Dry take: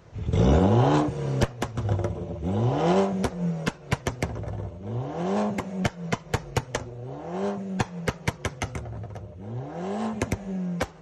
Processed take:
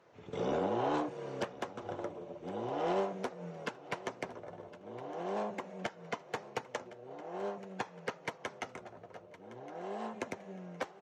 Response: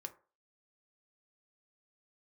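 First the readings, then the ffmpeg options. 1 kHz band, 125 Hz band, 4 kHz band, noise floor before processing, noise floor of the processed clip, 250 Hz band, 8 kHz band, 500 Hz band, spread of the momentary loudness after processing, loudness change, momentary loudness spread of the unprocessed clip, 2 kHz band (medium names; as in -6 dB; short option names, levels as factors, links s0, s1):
-8.0 dB, -23.5 dB, -11.0 dB, -45 dBFS, -56 dBFS, -15.0 dB, -15.0 dB, -9.0 dB, 15 LU, -12.0 dB, 13 LU, -9.0 dB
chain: -af "highpass=350,aemphasis=mode=reproduction:type=50kf,asoftclip=type=tanh:threshold=0.168,aecho=1:1:1063|2126|3189:0.126|0.0478|0.0182,volume=0.447"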